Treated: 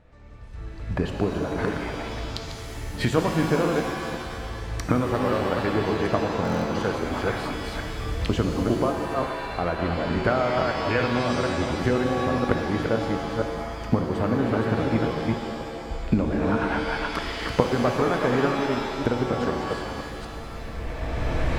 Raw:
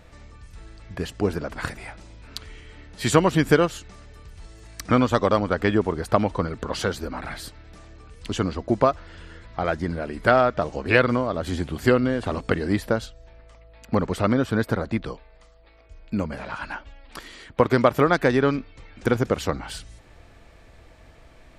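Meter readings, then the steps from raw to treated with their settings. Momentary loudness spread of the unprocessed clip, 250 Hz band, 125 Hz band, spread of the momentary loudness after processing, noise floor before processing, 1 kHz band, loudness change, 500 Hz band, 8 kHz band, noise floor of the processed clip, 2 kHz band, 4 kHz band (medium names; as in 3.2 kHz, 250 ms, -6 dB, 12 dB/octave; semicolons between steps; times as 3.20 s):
20 LU, 0.0 dB, +0.5 dB, 10 LU, -51 dBFS, -0.5 dB, -2.5 dB, -1.5 dB, -3.5 dB, -35 dBFS, -1.5 dB, +1.0 dB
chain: chunks repeated in reverse 244 ms, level -4.5 dB; recorder AGC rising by 16 dB/s; low-pass 1.6 kHz 6 dB/octave; buffer glitch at 6.43 s, samples 1024, times 8; pitch-shifted reverb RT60 2 s, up +7 st, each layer -2 dB, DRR 5.5 dB; trim -6.5 dB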